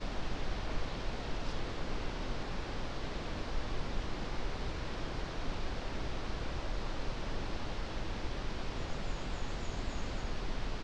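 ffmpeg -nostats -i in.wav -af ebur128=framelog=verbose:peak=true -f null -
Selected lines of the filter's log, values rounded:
Integrated loudness:
  I:         -40.8 LUFS
  Threshold: -50.8 LUFS
Loudness range:
  LRA:         0.3 LU
  Threshold: -60.9 LUFS
  LRA low:   -41.0 LUFS
  LRA high:  -40.7 LUFS
True peak:
  Peak:      -22.0 dBFS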